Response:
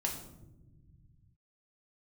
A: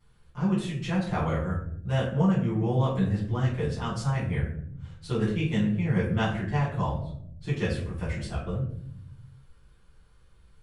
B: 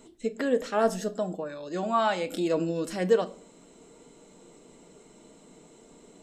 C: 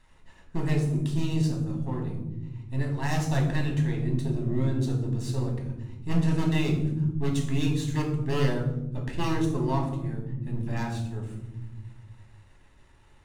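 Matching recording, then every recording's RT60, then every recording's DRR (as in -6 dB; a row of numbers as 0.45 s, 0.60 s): C; 0.65 s, 0.45 s, no single decay rate; -12.5 dB, 9.5 dB, 0.0 dB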